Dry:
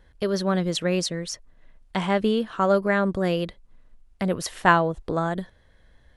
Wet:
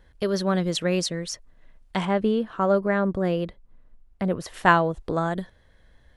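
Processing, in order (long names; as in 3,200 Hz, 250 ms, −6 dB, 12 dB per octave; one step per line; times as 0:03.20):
0:02.05–0:04.54: high-shelf EQ 2,300 Hz −10.5 dB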